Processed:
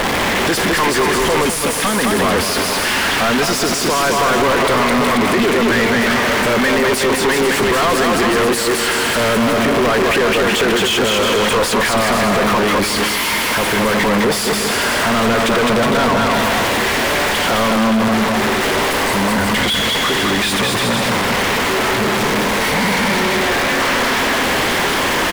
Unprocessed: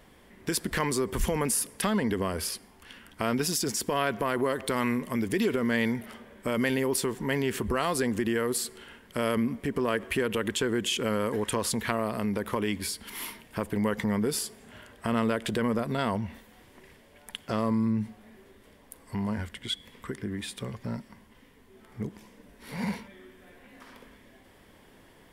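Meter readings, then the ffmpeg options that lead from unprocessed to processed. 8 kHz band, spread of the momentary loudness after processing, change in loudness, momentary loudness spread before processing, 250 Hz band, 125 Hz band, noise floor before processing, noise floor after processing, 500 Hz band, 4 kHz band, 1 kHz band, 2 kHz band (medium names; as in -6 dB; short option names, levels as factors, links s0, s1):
+14.0 dB, 2 LU, +15.0 dB, 11 LU, +12.0 dB, +10.5 dB, -57 dBFS, -18 dBFS, +15.0 dB, +19.5 dB, +19.0 dB, +20.5 dB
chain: -filter_complex "[0:a]aeval=exprs='val(0)+0.5*0.0501*sgn(val(0))':c=same,aecho=1:1:210|367.5|485.6|574.2|640.7:0.631|0.398|0.251|0.158|0.1,asplit=2[s0][s1];[s1]highpass=f=720:p=1,volume=50.1,asoftclip=type=tanh:threshold=0.447[s2];[s0][s2]amix=inputs=2:normalize=0,lowpass=f=2900:p=1,volume=0.501"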